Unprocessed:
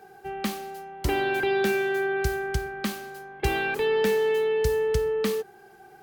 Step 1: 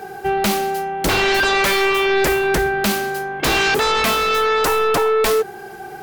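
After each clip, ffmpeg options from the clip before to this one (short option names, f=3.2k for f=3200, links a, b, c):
-af "aeval=exprs='0.266*sin(PI/2*5.62*val(0)/0.266)':c=same,volume=-2dB"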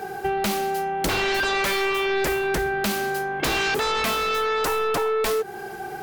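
-af "acompressor=threshold=-22dB:ratio=6"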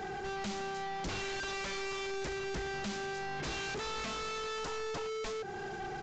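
-af "asoftclip=type=hard:threshold=-33dB,aresample=16000,aresample=44100,bass=f=250:g=6,treble=f=4k:g=2,volume=-5dB"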